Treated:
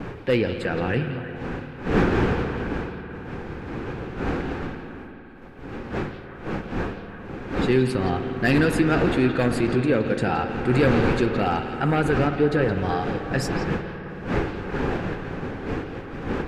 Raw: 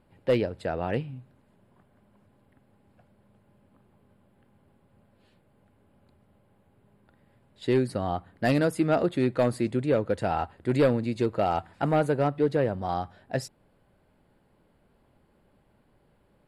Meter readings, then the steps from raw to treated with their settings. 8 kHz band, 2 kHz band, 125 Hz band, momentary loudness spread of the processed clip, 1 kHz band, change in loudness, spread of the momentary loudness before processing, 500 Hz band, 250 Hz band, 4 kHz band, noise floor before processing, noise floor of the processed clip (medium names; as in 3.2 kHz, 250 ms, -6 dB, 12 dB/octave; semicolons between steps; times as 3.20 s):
+6.0 dB, +11.0 dB, +7.0 dB, 14 LU, +4.5 dB, +2.5 dB, 9 LU, +3.5 dB, +7.0 dB, +8.0 dB, -66 dBFS, -39 dBFS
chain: wind noise 550 Hz -34 dBFS; expander -50 dBFS; graphic EQ with 31 bands 630 Hz -11 dB, 1 kHz -4 dB, 1.6 kHz +6 dB, 2.5 kHz +5 dB, 10 kHz -5 dB; in parallel at +3 dB: peak limiter -24.5 dBFS, peak gain reduction 13 dB; on the sum: flange 0.42 Hz, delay 1.2 ms, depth 7.7 ms, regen -76%; repeats whose band climbs or falls 169 ms, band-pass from 3.7 kHz, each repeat -1.4 oct, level -7 dB; spring tank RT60 3.9 s, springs 54 ms, chirp 65 ms, DRR 8 dB; trim +4.5 dB